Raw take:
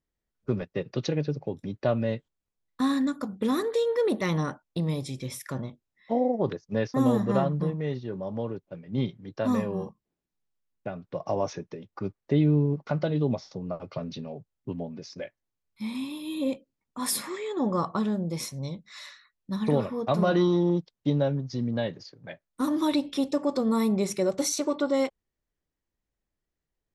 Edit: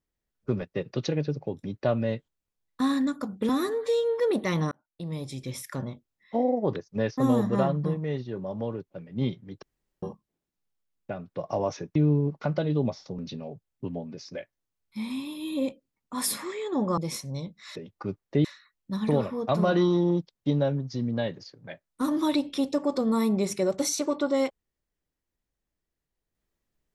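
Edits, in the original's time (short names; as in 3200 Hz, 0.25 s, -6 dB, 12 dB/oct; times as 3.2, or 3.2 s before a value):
3.49–3.96 stretch 1.5×
4.48–5.26 fade in
9.39–9.79 room tone
11.72–12.41 move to 19.04
13.64–14.03 cut
17.82–18.26 cut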